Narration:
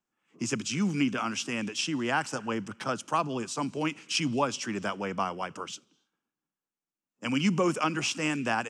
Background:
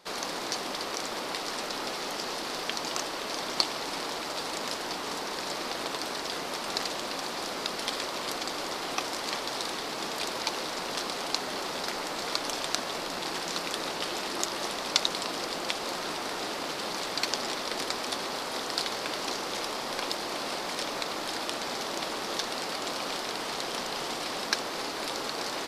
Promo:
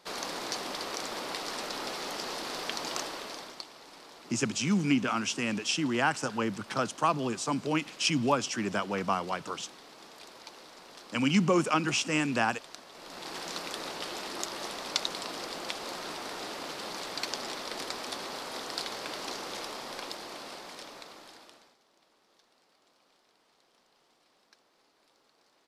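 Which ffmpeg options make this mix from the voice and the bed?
-filter_complex "[0:a]adelay=3900,volume=1dB[a];[1:a]volume=9.5dB,afade=t=out:st=3:d=0.61:silence=0.188365,afade=t=in:st=12.93:d=0.5:silence=0.251189,afade=t=out:st=19.5:d=2.26:silence=0.0334965[b];[a][b]amix=inputs=2:normalize=0"

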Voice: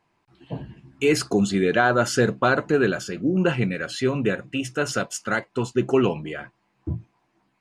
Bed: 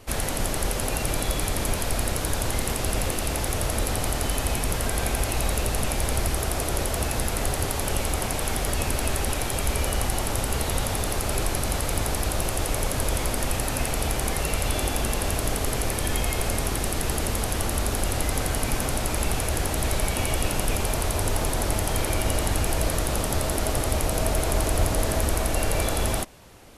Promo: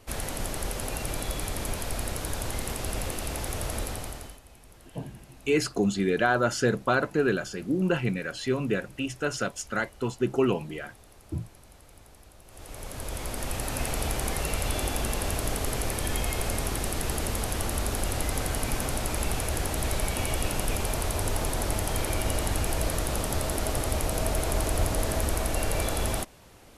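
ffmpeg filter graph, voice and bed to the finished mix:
-filter_complex "[0:a]adelay=4450,volume=-4.5dB[a];[1:a]volume=17.5dB,afade=t=out:st=3.77:d=0.63:silence=0.0891251,afade=t=in:st=12.46:d=1.44:silence=0.0668344[b];[a][b]amix=inputs=2:normalize=0"

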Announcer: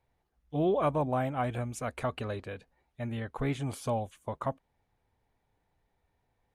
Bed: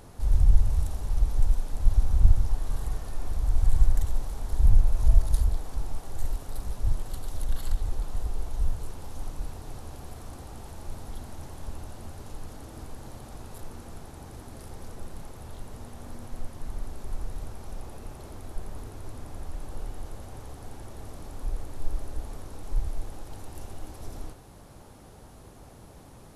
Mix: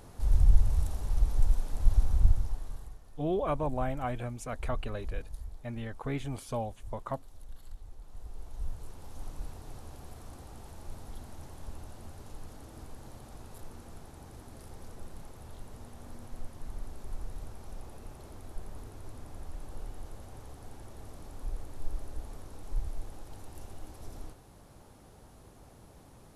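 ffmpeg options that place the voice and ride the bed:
-filter_complex "[0:a]adelay=2650,volume=-3dB[a];[1:a]volume=10.5dB,afade=t=out:st=2:d=0.97:silence=0.158489,afade=t=in:st=7.99:d=1.36:silence=0.223872[b];[a][b]amix=inputs=2:normalize=0"

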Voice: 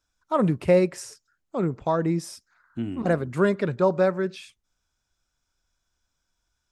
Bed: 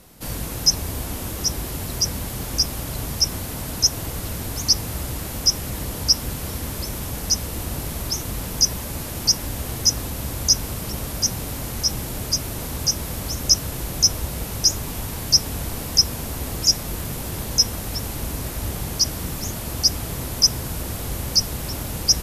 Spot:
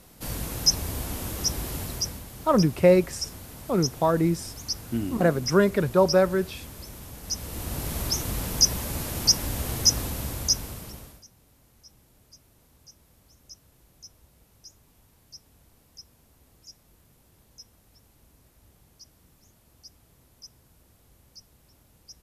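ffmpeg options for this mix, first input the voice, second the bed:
-filter_complex "[0:a]adelay=2150,volume=1.5dB[a];[1:a]volume=8dB,afade=t=out:st=1.78:d=0.46:silence=0.334965,afade=t=in:st=7.22:d=0.77:silence=0.266073,afade=t=out:st=9.97:d=1.27:silence=0.0334965[b];[a][b]amix=inputs=2:normalize=0"

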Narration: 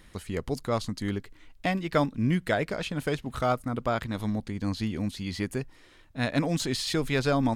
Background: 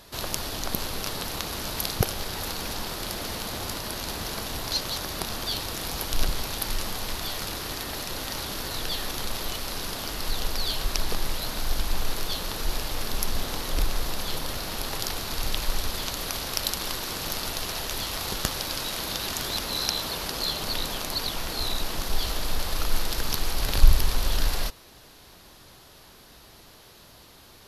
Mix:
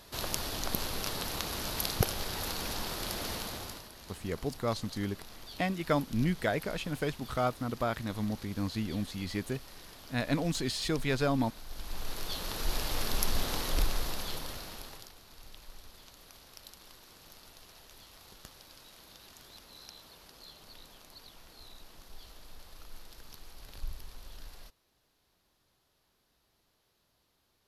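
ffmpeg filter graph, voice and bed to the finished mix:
-filter_complex "[0:a]adelay=3950,volume=-4dB[a];[1:a]volume=12dB,afade=t=out:st=3.32:d=0.58:silence=0.188365,afade=t=in:st=11.68:d=1.27:silence=0.158489,afade=t=out:st=13.61:d=1.5:silence=0.0891251[b];[a][b]amix=inputs=2:normalize=0"

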